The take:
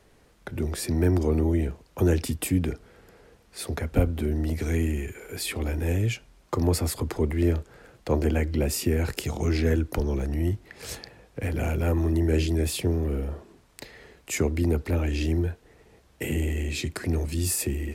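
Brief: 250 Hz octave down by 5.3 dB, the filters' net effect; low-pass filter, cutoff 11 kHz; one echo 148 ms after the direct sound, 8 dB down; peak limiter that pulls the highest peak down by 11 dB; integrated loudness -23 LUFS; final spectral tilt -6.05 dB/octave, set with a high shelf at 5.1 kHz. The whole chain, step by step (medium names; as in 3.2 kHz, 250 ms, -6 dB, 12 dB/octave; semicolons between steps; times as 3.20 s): low-pass 11 kHz; peaking EQ 250 Hz -7.5 dB; treble shelf 5.1 kHz -8 dB; peak limiter -20 dBFS; delay 148 ms -8 dB; trim +7 dB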